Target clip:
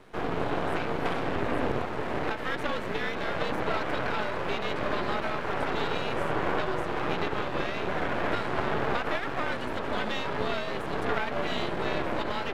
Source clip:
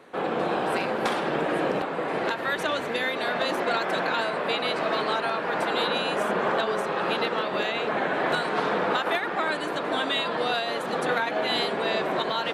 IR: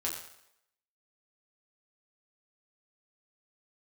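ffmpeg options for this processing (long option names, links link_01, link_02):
-filter_complex "[0:a]lowshelf=frequency=260:gain=5,afreqshift=-56,aeval=exprs='max(val(0),0)':channel_layout=same,acrossover=split=3400[link_01][link_02];[link_02]acompressor=threshold=-51dB:ratio=4:attack=1:release=60[link_03];[link_01][link_03]amix=inputs=2:normalize=0"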